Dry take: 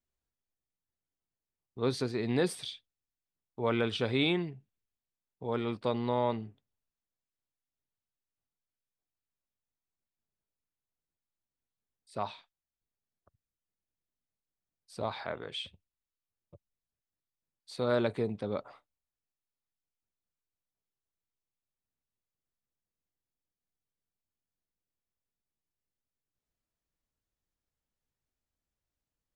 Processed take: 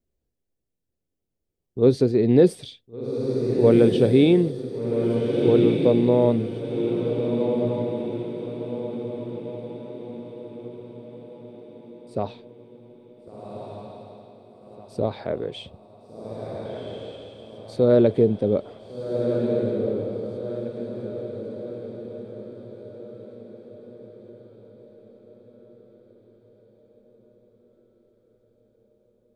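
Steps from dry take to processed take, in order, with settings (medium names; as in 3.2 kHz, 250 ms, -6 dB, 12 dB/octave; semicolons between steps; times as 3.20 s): resonant low shelf 710 Hz +12 dB, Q 1.5; echo that smears into a reverb 1502 ms, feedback 46%, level -4.5 dB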